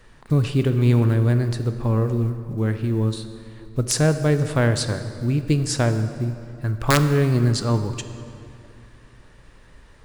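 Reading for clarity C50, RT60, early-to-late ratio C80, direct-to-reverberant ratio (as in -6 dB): 10.0 dB, 2.5 s, 11.0 dB, 8.5 dB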